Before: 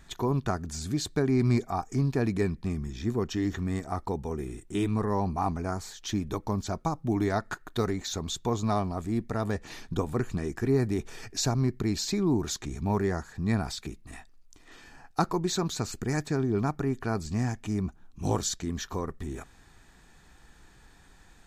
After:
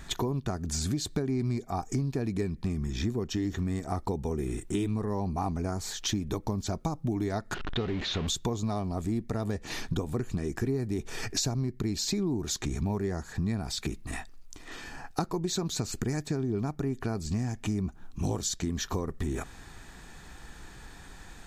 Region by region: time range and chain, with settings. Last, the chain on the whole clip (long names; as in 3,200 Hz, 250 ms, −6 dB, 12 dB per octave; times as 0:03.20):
0:07.54–0:08.27: converter with a step at zero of −29 dBFS + transistor ladder low-pass 4,000 Hz, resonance 30%
whole clip: dynamic equaliser 1,300 Hz, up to −6 dB, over −44 dBFS, Q 0.79; downward compressor 6 to 1, threshold −36 dBFS; level +8.5 dB